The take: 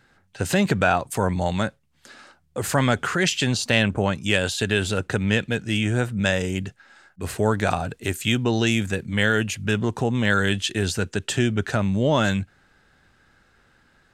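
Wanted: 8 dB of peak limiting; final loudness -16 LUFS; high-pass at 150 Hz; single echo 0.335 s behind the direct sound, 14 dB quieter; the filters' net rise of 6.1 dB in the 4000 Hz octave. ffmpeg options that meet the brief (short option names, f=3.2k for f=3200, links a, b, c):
-af "highpass=150,equalizer=f=4k:t=o:g=8,alimiter=limit=-8dB:level=0:latency=1,aecho=1:1:335:0.2,volume=6.5dB"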